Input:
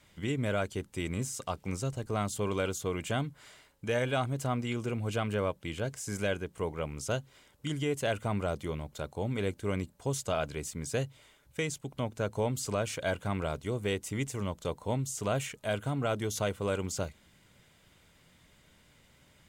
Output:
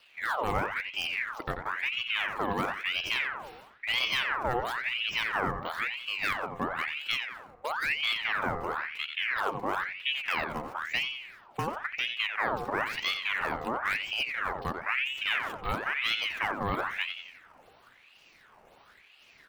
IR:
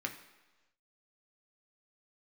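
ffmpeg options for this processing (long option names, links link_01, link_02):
-filter_complex "[0:a]aemphasis=mode=reproduction:type=50fm,asplit=2[link_01][link_02];[link_02]acompressor=threshold=-38dB:ratio=6,volume=1.5dB[link_03];[link_01][link_03]amix=inputs=2:normalize=0,aresample=11025,aresample=44100,acrossover=split=1900[link_04][link_05];[link_05]acrusher=samples=9:mix=1:aa=0.000001:lfo=1:lforange=14.4:lforate=1.9[link_06];[link_04][link_06]amix=inputs=2:normalize=0,asplit=2[link_07][link_08];[link_08]adelay=89,lowpass=frequency=1700:poles=1,volume=-6dB,asplit=2[link_09][link_10];[link_10]adelay=89,lowpass=frequency=1700:poles=1,volume=0.53,asplit=2[link_11][link_12];[link_12]adelay=89,lowpass=frequency=1700:poles=1,volume=0.53,asplit=2[link_13][link_14];[link_14]adelay=89,lowpass=frequency=1700:poles=1,volume=0.53,asplit=2[link_15][link_16];[link_16]adelay=89,lowpass=frequency=1700:poles=1,volume=0.53,asplit=2[link_17][link_18];[link_18]adelay=89,lowpass=frequency=1700:poles=1,volume=0.53,asplit=2[link_19][link_20];[link_20]adelay=89,lowpass=frequency=1700:poles=1,volume=0.53[link_21];[link_07][link_09][link_11][link_13][link_15][link_17][link_19][link_21]amix=inputs=8:normalize=0,aeval=exprs='val(0)*sin(2*PI*1700*n/s+1700*0.65/0.99*sin(2*PI*0.99*n/s))':channel_layout=same"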